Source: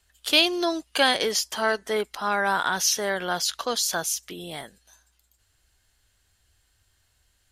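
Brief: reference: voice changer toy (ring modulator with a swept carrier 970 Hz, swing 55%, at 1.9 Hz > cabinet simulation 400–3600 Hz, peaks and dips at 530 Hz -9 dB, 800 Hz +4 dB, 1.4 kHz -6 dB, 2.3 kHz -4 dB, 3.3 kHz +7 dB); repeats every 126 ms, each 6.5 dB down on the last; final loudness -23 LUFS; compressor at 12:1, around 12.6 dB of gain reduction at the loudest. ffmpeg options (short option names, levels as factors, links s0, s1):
-af "acompressor=threshold=0.0447:ratio=12,aecho=1:1:126|252|378|504|630|756:0.473|0.222|0.105|0.0491|0.0231|0.0109,aeval=exprs='val(0)*sin(2*PI*970*n/s+970*0.55/1.9*sin(2*PI*1.9*n/s))':c=same,highpass=400,equalizer=f=530:t=q:w=4:g=-9,equalizer=f=800:t=q:w=4:g=4,equalizer=f=1400:t=q:w=4:g=-6,equalizer=f=2300:t=q:w=4:g=-4,equalizer=f=3300:t=q:w=4:g=7,lowpass=f=3600:w=0.5412,lowpass=f=3600:w=1.3066,volume=4.47"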